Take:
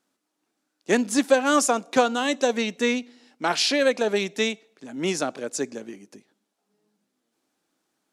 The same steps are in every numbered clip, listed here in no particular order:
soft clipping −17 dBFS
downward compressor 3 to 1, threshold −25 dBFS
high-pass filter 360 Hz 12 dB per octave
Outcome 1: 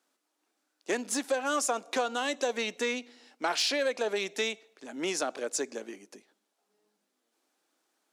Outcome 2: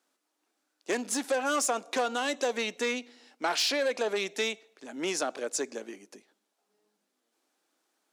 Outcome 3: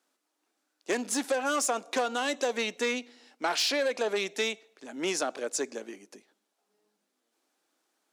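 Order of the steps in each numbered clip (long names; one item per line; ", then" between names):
downward compressor, then soft clipping, then high-pass filter
soft clipping, then downward compressor, then high-pass filter
soft clipping, then high-pass filter, then downward compressor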